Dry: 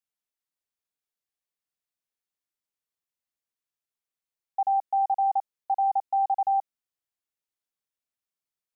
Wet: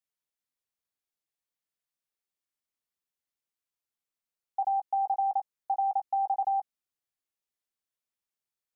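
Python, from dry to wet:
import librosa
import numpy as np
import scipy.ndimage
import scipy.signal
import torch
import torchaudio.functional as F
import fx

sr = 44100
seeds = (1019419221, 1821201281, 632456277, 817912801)

y = fx.doubler(x, sr, ms=16.0, db=-13.0)
y = y * librosa.db_to_amplitude(-2.0)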